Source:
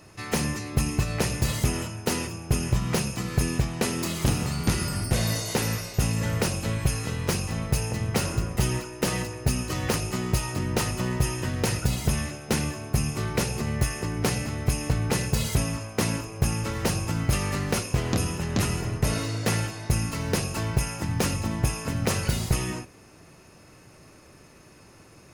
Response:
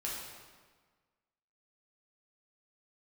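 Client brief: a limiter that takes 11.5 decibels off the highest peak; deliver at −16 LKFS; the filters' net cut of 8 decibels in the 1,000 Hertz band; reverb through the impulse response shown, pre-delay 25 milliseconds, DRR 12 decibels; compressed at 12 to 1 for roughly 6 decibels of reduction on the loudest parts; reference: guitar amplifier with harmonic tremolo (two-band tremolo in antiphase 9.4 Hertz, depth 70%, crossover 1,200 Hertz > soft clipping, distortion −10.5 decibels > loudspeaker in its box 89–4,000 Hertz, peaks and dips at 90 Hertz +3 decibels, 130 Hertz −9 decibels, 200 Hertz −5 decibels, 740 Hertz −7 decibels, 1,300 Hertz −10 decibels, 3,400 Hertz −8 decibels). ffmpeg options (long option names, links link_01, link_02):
-filter_complex "[0:a]equalizer=frequency=1000:width_type=o:gain=-3.5,acompressor=threshold=-24dB:ratio=12,alimiter=level_in=1dB:limit=-24dB:level=0:latency=1,volume=-1dB,asplit=2[link_01][link_02];[1:a]atrim=start_sample=2205,adelay=25[link_03];[link_02][link_03]afir=irnorm=-1:irlink=0,volume=-14.5dB[link_04];[link_01][link_04]amix=inputs=2:normalize=0,acrossover=split=1200[link_05][link_06];[link_05]aeval=exprs='val(0)*(1-0.7/2+0.7/2*cos(2*PI*9.4*n/s))':channel_layout=same[link_07];[link_06]aeval=exprs='val(0)*(1-0.7/2-0.7/2*cos(2*PI*9.4*n/s))':channel_layout=same[link_08];[link_07][link_08]amix=inputs=2:normalize=0,asoftclip=threshold=-36.5dB,highpass=89,equalizer=frequency=90:width_type=q:width=4:gain=3,equalizer=frequency=130:width_type=q:width=4:gain=-9,equalizer=frequency=200:width_type=q:width=4:gain=-5,equalizer=frequency=740:width_type=q:width=4:gain=-7,equalizer=frequency=1300:width_type=q:width=4:gain=-10,equalizer=frequency=3400:width_type=q:width=4:gain=-8,lowpass=frequency=4000:width=0.5412,lowpass=frequency=4000:width=1.3066,volume=29.5dB"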